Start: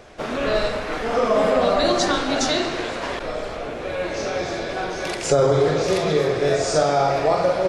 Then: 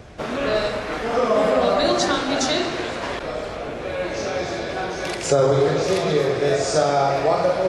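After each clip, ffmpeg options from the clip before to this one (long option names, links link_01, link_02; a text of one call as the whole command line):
ffmpeg -i in.wav -filter_complex "[0:a]highpass=44,acrossover=split=200[link_01][link_02];[link_01]acompressor=mode=upward:threshold=-34dB:ratio=2.5[link_03];[link_03][link_02]amix=inputs=2:normalize=0" out.wav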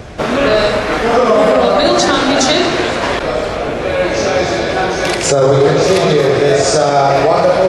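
ffmpeg -i in.wav -af "alimiter=level_in=12.5dB:limit=-1dB:release=50:level=0:latency=1,volume=-1dB" out.wav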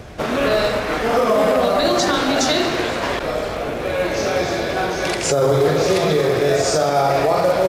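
ffmpeg -i in.wav -af "acrusher=bits=6:mode=log:mix=0:aa=0.000001,aresample=32000,aresample=44100,volume=-6dB" out.wav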